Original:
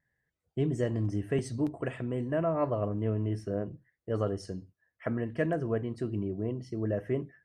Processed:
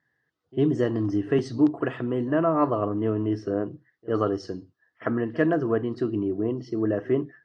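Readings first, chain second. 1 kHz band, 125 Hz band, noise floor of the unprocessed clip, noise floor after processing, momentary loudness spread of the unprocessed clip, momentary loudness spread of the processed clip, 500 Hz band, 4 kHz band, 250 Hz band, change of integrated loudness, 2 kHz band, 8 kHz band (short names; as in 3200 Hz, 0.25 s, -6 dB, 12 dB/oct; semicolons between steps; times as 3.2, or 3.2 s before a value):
+9.0 dB, +1.0 dB, under -85 dBFS, -77 dBFS, 7 LU, 8 LU, +6.5 dB, +6.0 dB, +8.5 dB, +6.5 dB, +7.0 dB, n/a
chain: speaker cabinet 160–5300 Hz, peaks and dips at 190 Hz -7 dB, 310 Hz +4 dB, 570 Hz -6 dB, 1200 Hz +5 dB, 2300 Hz -9 dB; pre-echo 50 ms -23 dB; gain +8 dB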